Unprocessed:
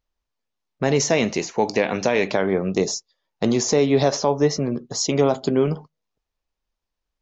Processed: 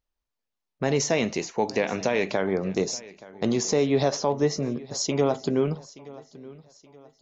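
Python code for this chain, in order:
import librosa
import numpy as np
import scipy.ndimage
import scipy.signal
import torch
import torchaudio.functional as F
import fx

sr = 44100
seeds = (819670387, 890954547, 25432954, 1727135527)

y = fx.echo_feedback(x, sr, ms=875, feedback_pct=40, wet_db=-20)
y = y * 10.0 ** (-4.5 / 20.0)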